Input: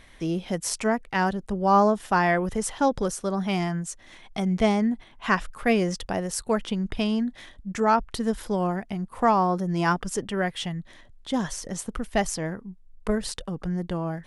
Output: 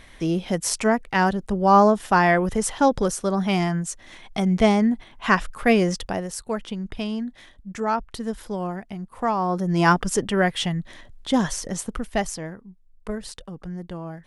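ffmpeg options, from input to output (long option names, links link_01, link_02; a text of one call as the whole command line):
ffmpeg -i in.wav -af "volume=13dB,afade=type=out:start_time=5.89:duration=0.47:silence=0.446684,afade=type=in:start_time=9.38:duration=0.48:silence=0.354813,afade=type=out:start_time=11.33:duration=1.22:silence=0.281838" out.wav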